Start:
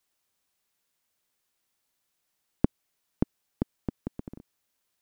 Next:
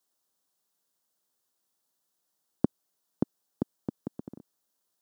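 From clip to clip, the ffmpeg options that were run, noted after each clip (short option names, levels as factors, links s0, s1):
-af "highpass=150,equalizer=f=2300:t=o:w=0.77:g=-13.5"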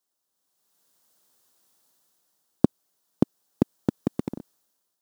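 -filter_complex "[0:a]dynaudnorm=f=280:g=5:m=5.62,asplit=2[s0][s1];[s1]acrusher=bits=4:dc=4:mix=0:aa=0.000001,volume=0.282[s2];[s0][s2]amix=inputs=2:normalize=0,volume=0.75"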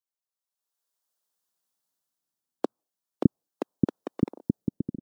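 -filter_complex "[0:a]acrossover=split=370[s0][s1];[s0]adelay=610[s2];[s2][s1]amix=inputs=2:normalize=0,afftdn=nr=15:nf=-53"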